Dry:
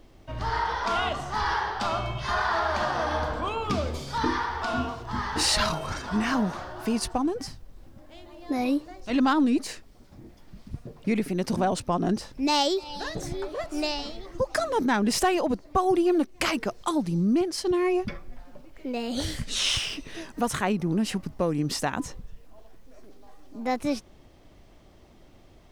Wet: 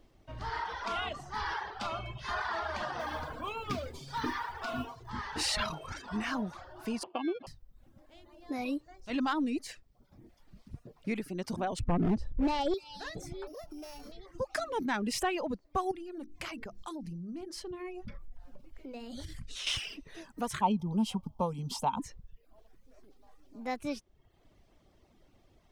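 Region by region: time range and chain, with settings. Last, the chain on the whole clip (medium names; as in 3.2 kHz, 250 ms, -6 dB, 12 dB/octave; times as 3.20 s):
2.99–5.10 s: comb 7.4 ms, depth 35% + modulation noise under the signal 29 dB
7.03–7.47 s: sample-rate reducer 1.9 kHz + cabinet simulation 290–3100 Hz, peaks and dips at 350 Hz +8 dB, 610 Hz +5 dB, 1.5 kHz -9 dB, 2.2 kHz -7 dB
11.79–12.74 s: tilt EQ -4.5 dB/octave + overload inside the chain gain 15 dB
13.47–14.12 s: sorted samples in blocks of 8 samples + tilt shelf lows +4 dB, about 1.1 kHz + compression, threshold -32 dBFS
15.91–19.67 s: bass shelf 140 Hz +10.5 dB + hum notches 50/100/150/200/250/300/350 Hz + compression 4:1, threshold -30 dBFS
20.61–22.00 s: static phaser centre 740 Hz, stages 4 + small resonant body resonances 250/900/3200 Hz, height 16 dB, ringing for 25 ms
whole clip: reverb removal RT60 0.7 s; dynamic bell 2.4 kHz, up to +4 dB, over -42 dBFS, Q 1.1; trim -8.5 dB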